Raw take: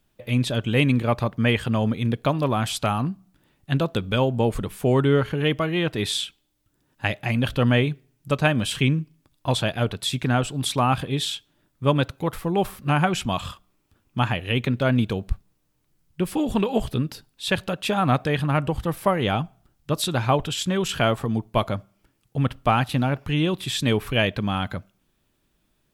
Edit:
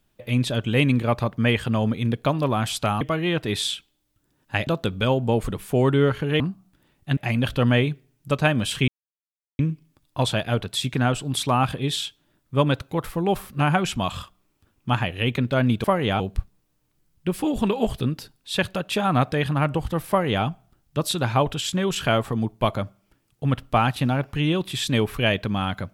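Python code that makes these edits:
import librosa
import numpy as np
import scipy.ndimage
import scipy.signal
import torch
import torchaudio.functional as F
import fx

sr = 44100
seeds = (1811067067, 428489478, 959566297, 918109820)

y = fx.edit(x, sr, fx.swap(start_s=3.01, length_s=0.77, other_s=5.51, other_length_s=1.66),
    fx.insert_silence(at_s=8.88, length_s=0.71),
    fx.duplicate(start_s=19.02, length_s=0.36, to_s=15.13), tone=tone)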